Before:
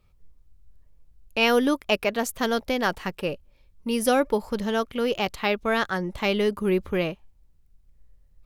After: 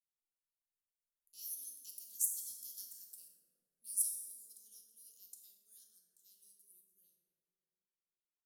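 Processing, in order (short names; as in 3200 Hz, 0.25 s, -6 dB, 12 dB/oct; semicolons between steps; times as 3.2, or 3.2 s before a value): Doppler pass-by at 2.79, 10 m/s, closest 12 m; inverse Chebyshev high-pass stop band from 2500 Hz, stop band 60 dB; plate-style reverb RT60 2.9 s, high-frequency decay 0.35×, pre-delay 0 ms, DRR -1 dB; mismatched tape noise reduction decoder only; gain +2 dB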